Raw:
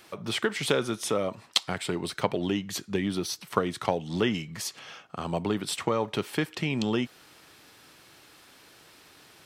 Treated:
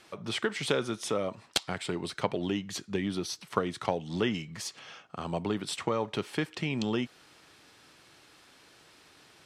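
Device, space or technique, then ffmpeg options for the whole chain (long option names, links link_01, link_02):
overflowing digital effects unit: -af "aeval=exprs='(mod(2.11*val(0)+1,2)-1)/2.11':channel_layout=same,lowpass=9500,volume=-3dB"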